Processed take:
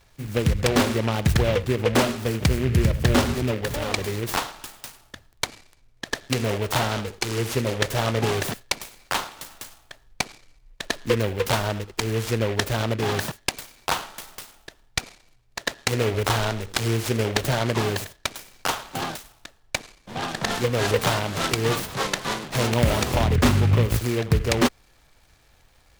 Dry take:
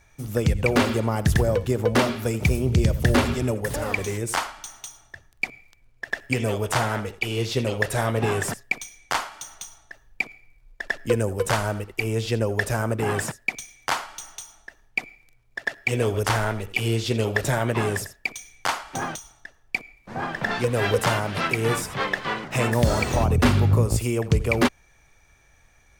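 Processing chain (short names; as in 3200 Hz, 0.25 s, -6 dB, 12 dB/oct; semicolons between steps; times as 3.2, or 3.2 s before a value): noise-modulated delay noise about 1900 Hz, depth 0.095 ms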